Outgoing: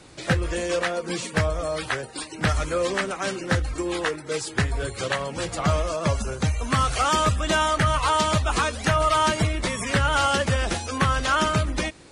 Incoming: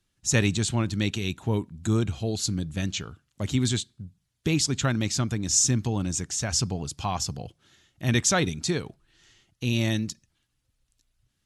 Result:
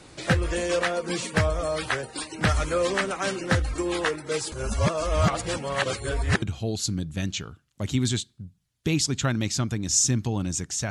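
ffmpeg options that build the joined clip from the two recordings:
-filter_complex "[0:a]apad=whole_dur=10.9,atrim=end=10.9,asplit=2[a][b];[a]atrim=end=4.522[c];[b]atrim=start=4.518:end=6.422,asetpts=PTS-STARTPTS,areverse[d];[1:a]atrim=start=2.018:end=6.5[e];[c][d]acrossfade=d=0.004:c1=hsin:c2=hsin[f];[f][e]acrossfade=d=0.004:c1=hsin:c2=hsin"

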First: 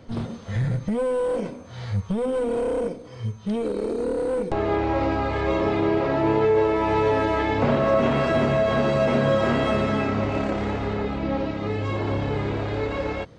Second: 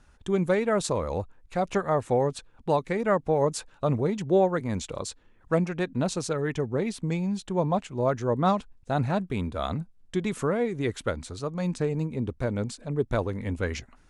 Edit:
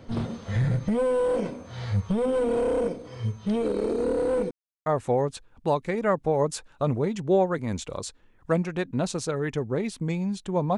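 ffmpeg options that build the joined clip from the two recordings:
-filter_complex "[0:a]apad=whole_dur=10.77,atrim=end=10.77,asplit=2[a][b];[a]atrim=end=4.51,asetpts=PTS-STARTPTS,afade=t=out:st=4.506:d=0.004:c=hsin[c];[b]atrim=start=4.51:end=4.86,asetpts=PTS-STARTPTS,volume=0[d];[1:a]atrim=start=1.88:end=7.79,asetpts=PTS-STARTPTS,afade=t=in:d=0.004:c=hsin[e];[c][d][e]concat=n=3:v=0:a=1"

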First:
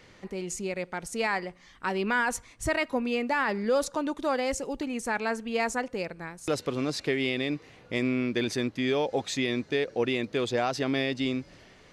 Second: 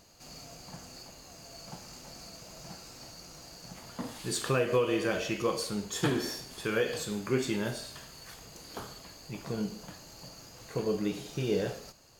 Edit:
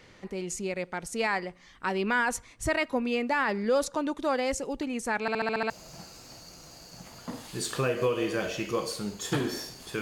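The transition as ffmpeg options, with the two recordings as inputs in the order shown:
-filter_complex "[0:a]apad=whole_dur=10.01,atrim=end=10.01,asplit=7[a][b][c][d][e][f][g];[a]atrim=end=5.282[h];[b]atrim=start=5.208:end=5.282[i];[c]atrim=start=5.208:end=5.282[j];[d]atrim=start=5.208:end=5.282[k];[e]atrim=start=5.208:end=5.282[l];[f]atrim=start=5.208:end=5.282[m];[g]atrim=start=5.208:end=5.282[n];[1:a]atrim=start=2.408:end=6.72[o];[h][i]acrossfade=d=0.004:c1=hsin:c2=hsin[p];[p][j]acrossfade=d=0.004:c1=hsin:c2=hsin[q];[q][k]acrossfade=d=0.004:c1=hsin:c2=hsin[r];[r][l]acrossfade=d=0.004:c1=hsin:c2=hsin[s];[s][m]acrossfade=d=0.004:c1=hsin:c2=hsin[t];[t][n]acrossfade=d=0.004:c1=hsin:c2=hsin[u];[u][o]acrossfade=d=0.004:c1=hsin:c2=hsin"

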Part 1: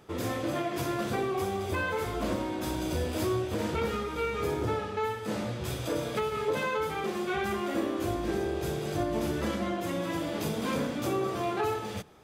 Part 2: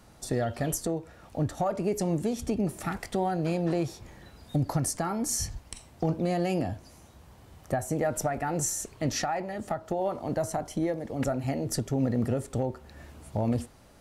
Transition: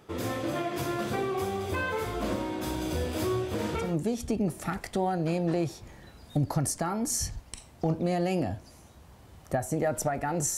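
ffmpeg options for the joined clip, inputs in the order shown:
-filter_complex "[0:a]apad=whole_dur=10.57,atrim=end=10.57,atrim=end=3.97,asetpts=PTS-STARTPTS[a];[1:a]atrim=start=1.94:end=8.76,asetpts=PTS-STARTPTS[b];[a][b]acrossfade=d=0.22:c1=tri:c2=tri"

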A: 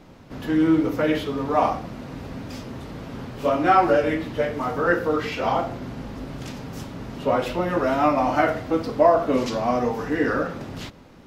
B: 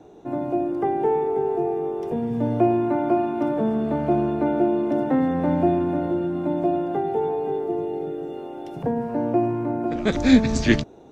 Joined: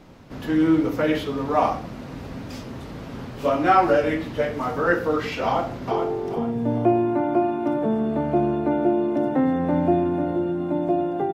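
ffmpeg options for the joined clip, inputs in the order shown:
-filter_complex "[0:a]apad=whole_dur=11.33,atrim=end=11.33,atrim=end=5.912[a];[1:a]atrim=start=1.658:end=7.08[b];[a][b]acrossfade=d=0.004:c1=hsin:c2=hsin,asplit=2[c][d];[d]afade=t=in:st=5.44:d=0.01,afade=t=out:st=5.91:d=0.01,aecho=0:1:430|860|1290|1720:0.562341|0.196819|0.0688868|0.0241104[e];[c][e]amix=inputs=2:normalize=0"

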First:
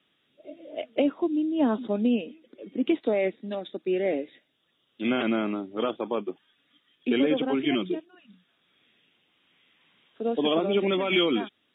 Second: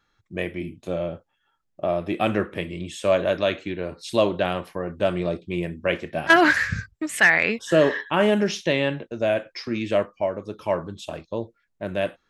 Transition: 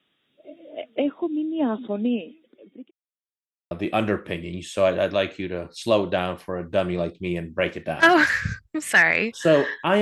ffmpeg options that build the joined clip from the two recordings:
-filter_complex "[0:a]apad=whole_dur=10.01,atrim=end=10.01,asplit=2[a][b];[a]atrim=end=2.91,asetpts=PTS-STARTPTS,afade=t=out:st=2.05:d=0.86:c=qsin[c];[b]atrim=start=2.91:end=3.71,asetpts=PTS-STARTPTS,volume=0[d];[1:a]atrim=start=1.98:end=8.28,asetpts=PTS-STARTPTS,afade=t=in:d=0.004:c=hsin[e];[c][d][e]concat=n=3:v=0:a=1"

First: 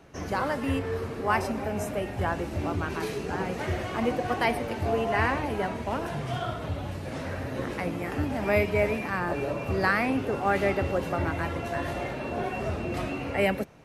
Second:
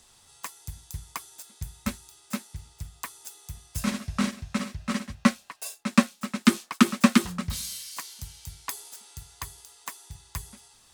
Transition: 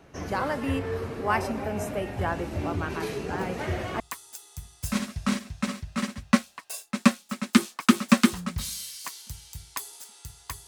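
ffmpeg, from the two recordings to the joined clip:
-filter_complex "[1:a]asplit=2[a][b];[0:a]apad=whole_dur=10.67,atrim=end=10.67,atrim=end=4.002[c];[b]atrim=start=2.918:end=9.59[d];[a]atrim=start=2.29:end=2.92,asetpts=PTS-STARTPTS,volume=-15.5dB,afade=t=in:d=0.004:c=hsin,afade=t=out:st=0.626:d=0.004:c=hsin,adelay=148617S[e];[c][d]acrossfade=d=0.004:c1=hsin:c2=hsin[f];[f][e]amix=inputs=2:normalize=0"

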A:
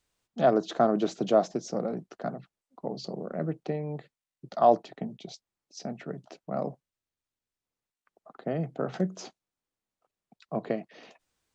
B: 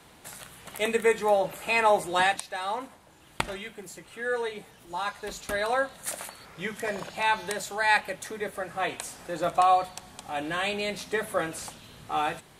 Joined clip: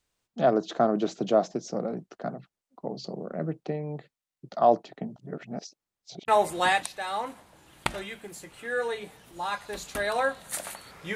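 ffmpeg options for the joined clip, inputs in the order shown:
-filter_complex "[0:a]apad=whole_dur=11.15,atrim=end=11.15,asplit=2[a][b];[a]atrim=end=5.162[c];[b]atrim=start=5.158:end=6.282,asetpts=PTS-STARTPTS,areverse[d];[1:a]atrim=start=1.818:end=6.69[e];[c][d]acrossfade=d=0.004:c1=hsin:c2=hsin[f];[f][e]acrossfade=d=0.004:c1=hsin:c2=hsin"

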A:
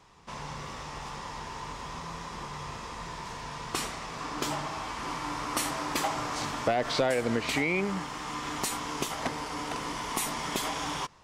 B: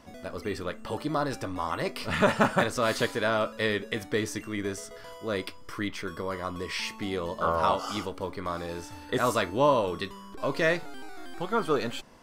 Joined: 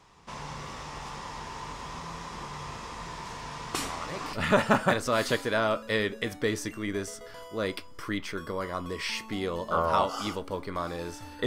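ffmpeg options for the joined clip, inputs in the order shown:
-filter_complex "[1:a]asplit=2[a][b];[0:a]apad=whole_dur=11.46,atrim=end=11.46,atrim=end=4.332[c];[b]atrim=start=2.028:end=9.16[d];[a]atrim=start=1.48:end=2.03,asetpts=PTS-STARTPTS,volume=-8.5dB,afade=t=in:d=0.004:c=hsin,afade=t=out:st=0.546:d=0.004:c=hsin,adelay=3780[e];[c][d]acrossfade=d=0.004:c1=hsin:c2=hsin[f];[f][e]amix=inputs=2:normalize=0"

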